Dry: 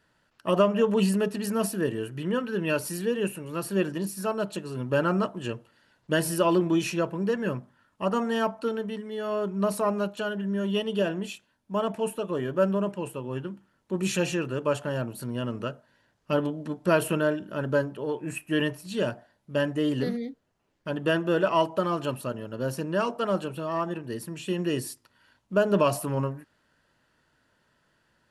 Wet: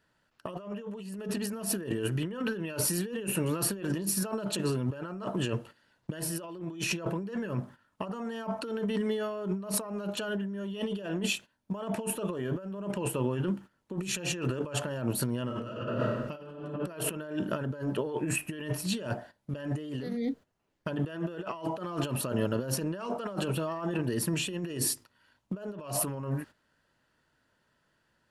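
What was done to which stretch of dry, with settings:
15.45–16.57 s: reverb throw, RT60 1.4 s, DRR -7.5 dB
whole clip: gate -51 dBFS, range -13 dB; compressor with a negative ratio -36 dBFS, ratio -1; trim +1.5 dB

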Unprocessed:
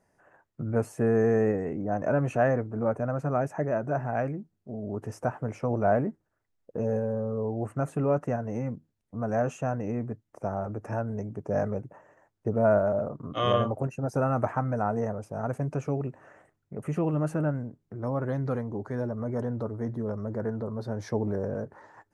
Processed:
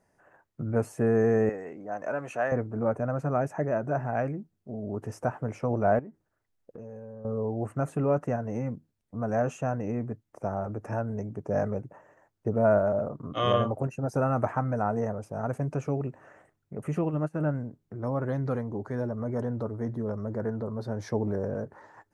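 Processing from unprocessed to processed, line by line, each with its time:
1.49–2.52 s: high-pass 870 Hz 6 dB/octave
5.99–7.25 s: compression 4:1, threshold -42 dBFS
17.01–17.41 s: upward expansion 2.5:1, over -39 dBFS

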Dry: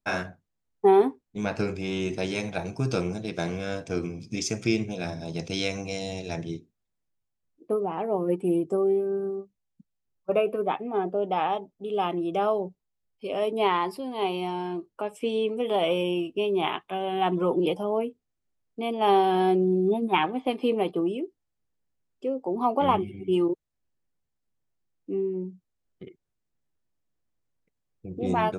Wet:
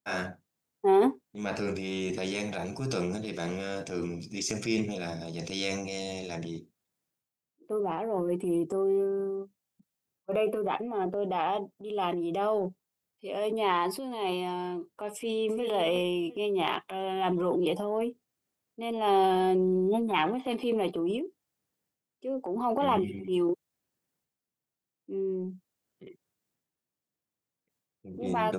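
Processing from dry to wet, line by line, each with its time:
15.13–15.66 s: echo throw 350 ms, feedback 15%, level -11.5 dB
whole clip: high-pass 130 Hz; treble shelf 7.8 kHz +6.5 dB; transient shaper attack -5 dB, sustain +7 dB; trim -3 dB

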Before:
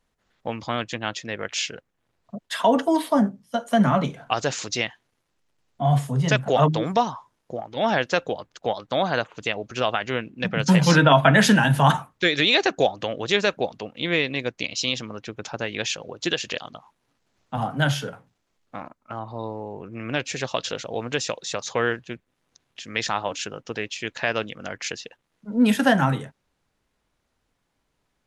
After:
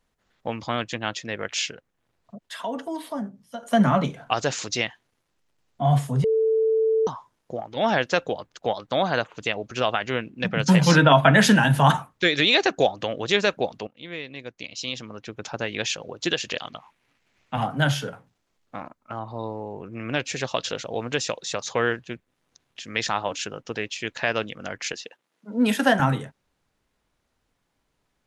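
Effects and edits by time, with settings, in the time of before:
1.72–3.63 s: compression 1.5:1, threshold -47 dBFS
6.24–7.07 s: bleep 443 Hz -17.5 dBFS
13.87–15.52 s: fade in quadratic, from -13.5 dB
16.60–17.66 s: peaking EQ 2.3 kHz +11 dB 1 oct
24.93–26.00 s: high-pass 240 Hz

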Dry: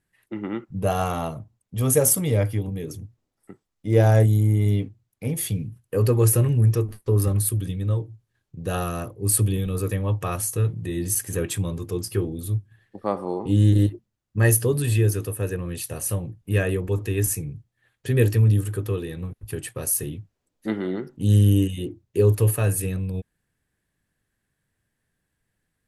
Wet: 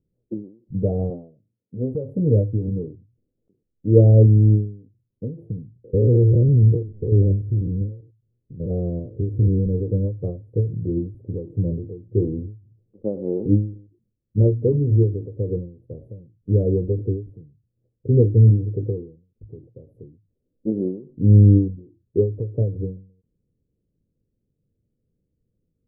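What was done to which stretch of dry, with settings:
1.10–1.95 s: Bessel high-pass 230 Hz
5.84–9.60 s: spectrogram pixelated in time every 100 ms
14.41–15.33 s: hum notches 60/120/180/240 Hz
whole clip: elliptic low-pass 510 Hz, stop band 70 dB; endings held to a fixed fall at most 120 dB/s; trim +5.5 dB

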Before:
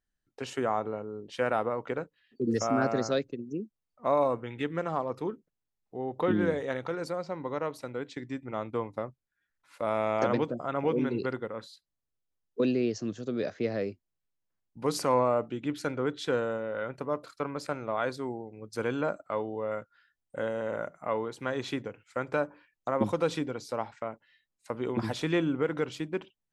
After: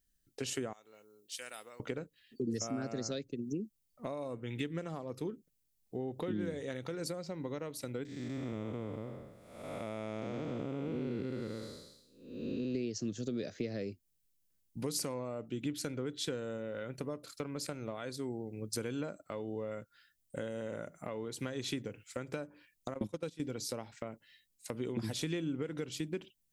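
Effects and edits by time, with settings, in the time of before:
0.73–1.80 s: differentiator
8.05–12.75 s: spectral blur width 447 ms
22.94–23.40 s: gate -29 dBFS, range -18 dB
whole clip: treble shelf 6.8 kHz +10 dB; compression 5:1, threshold -37 dBFS; peaking EQ 1 kHz -12.5 dB 1.9 oct; trim +6 dB

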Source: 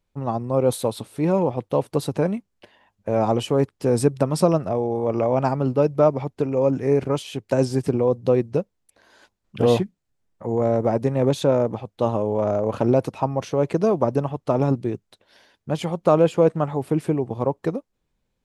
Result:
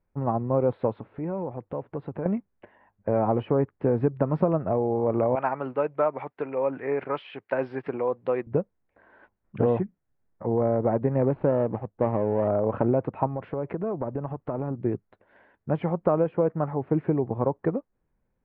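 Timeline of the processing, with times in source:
0.94–2.26 s: compression 2:1, threshold -36 dBFS
5.35–8.47 s: frequency weighting ITU-R 468
11.28–12.48 s: median filter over 25 samples
13.27–14.84 s: compression 4:1, threshold -27 dBFS
16.24–16.92 s: gain -3 dB
whole clip: inverse Chebyshev low-pass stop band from 6.2 kHz, stop band 60 dB; band-stop 1.2 kHz, Q 30; compression 4:1, threshold -19 dBFS

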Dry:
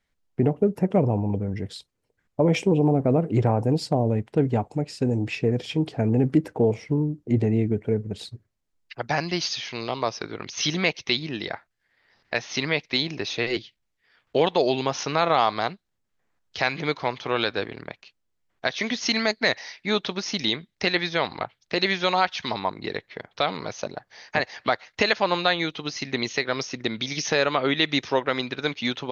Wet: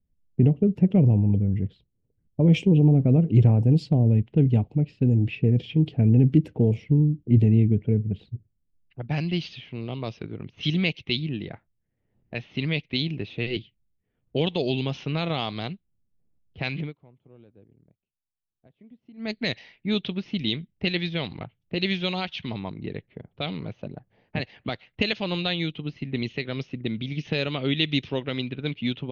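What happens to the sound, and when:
16.79–19.31 s: dip -21.5 dB, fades 0.14 s
whole clip: level-controlled noise filter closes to 690 Hz, open at -16.5 dBFS; FFT filter 160 Hz 0 dB, 980 Hz -21 dB, 1.7 kHz -19 dB, 2.9 kHz -4 dB, 5.2 kHz -16 dB; trim +6.5 dB

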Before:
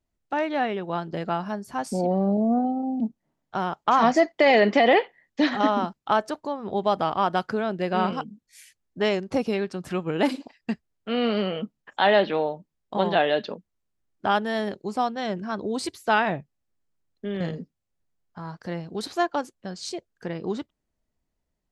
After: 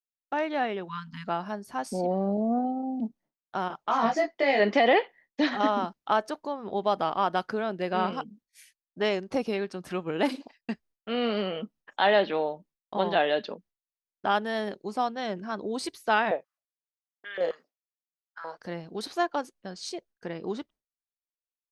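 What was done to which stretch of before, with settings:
0.88–1.27 s: spectral selection erased 270–890 Hz
3.68–4.60 s: detune thickener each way 11 cents
16.31–18.58 s: step-sequenced high-pass 7.5 Hz 510–2400 Hz
whole clip: expander -47 dBFS; peaking EQ 100 Hz -9 dB 1.5 oct; band-stop 7.4 kHz, Q 8.9; trim -2.5 dB

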